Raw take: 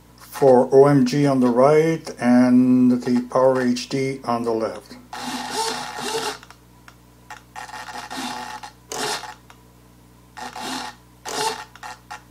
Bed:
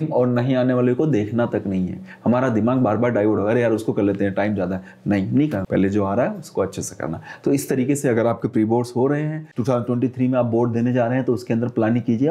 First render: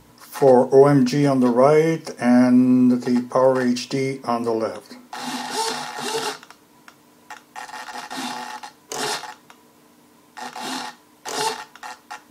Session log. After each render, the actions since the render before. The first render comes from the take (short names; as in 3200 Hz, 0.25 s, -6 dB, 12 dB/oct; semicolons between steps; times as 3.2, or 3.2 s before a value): de-hum 60 Hz, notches 3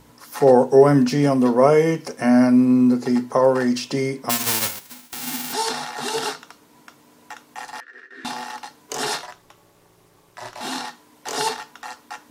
4.29–5.52 spectral whitening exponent 0.1; 7.8–8.25 double band-pass 830 Hz, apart 2.1 oct; 9.23–10.61 ring modulator 130 Hz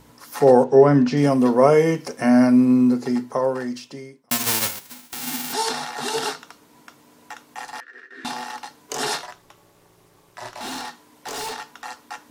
0.64–1.17 air absorption 120 m; 2.7–4.31 fade out; 10.58–11.54 overloaded stage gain 28 dB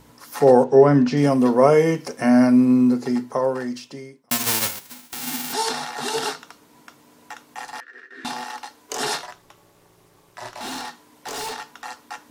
8.44–9.01 bell 150 Hz -11 dB 0.72 oct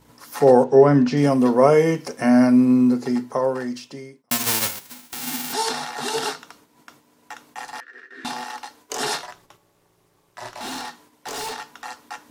gate -51 dBFS, range -7 dB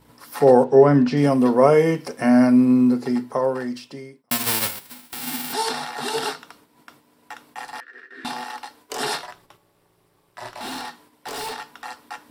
bell 6500 Hz -8.5 dB 0.3 oct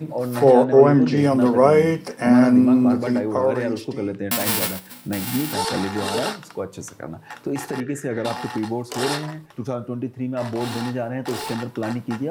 add bed -7.5 dB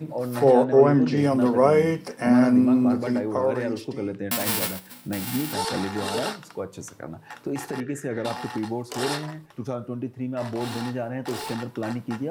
gain -3.5 dB